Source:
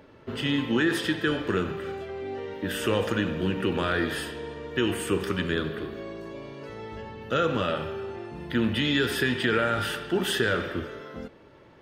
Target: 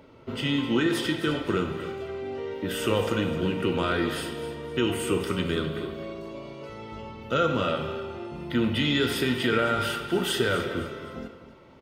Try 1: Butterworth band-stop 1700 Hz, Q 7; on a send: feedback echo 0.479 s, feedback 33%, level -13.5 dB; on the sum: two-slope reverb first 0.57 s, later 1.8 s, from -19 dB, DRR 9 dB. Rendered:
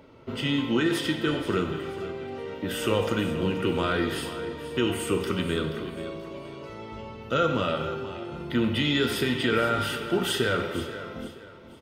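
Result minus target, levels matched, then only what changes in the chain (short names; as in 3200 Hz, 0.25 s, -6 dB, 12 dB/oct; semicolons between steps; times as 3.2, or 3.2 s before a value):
echo 0.221 s late
change: feedback echo 0.258 s, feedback 33%, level -13.5 dB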